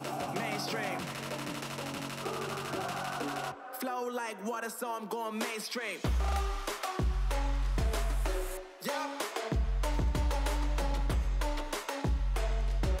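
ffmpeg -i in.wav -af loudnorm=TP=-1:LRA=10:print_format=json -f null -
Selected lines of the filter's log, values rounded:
"input_i" : "-34.6",
"input_tp" : "-22.2",
"input_lra" : "2.9",
"input_thresh" : "-44.6",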